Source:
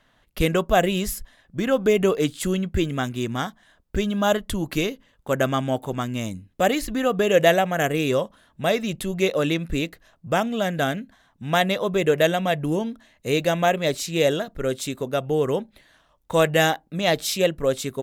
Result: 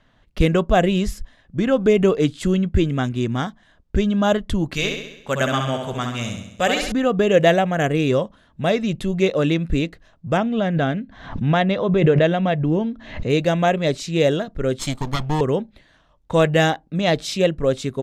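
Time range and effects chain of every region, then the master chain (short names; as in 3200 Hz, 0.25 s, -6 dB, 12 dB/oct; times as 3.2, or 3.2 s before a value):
4.74–6.92 tilt shelf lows -6 dB, about 920 Hz + notch 320 Hz, Q 5.7 + flutter echo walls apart 11.4 m, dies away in 0.79 s
10.37–13.3 air absorption 140 m + backwards sustainer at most 73 dB/s
14.79–15.41 minimum comb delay 0.93 ms + high shelf 3300 Hz +9.5 dB
whole clip: LPF 6400 Hz 12 dB/oct; low shelf 330 Hz +7.5 dB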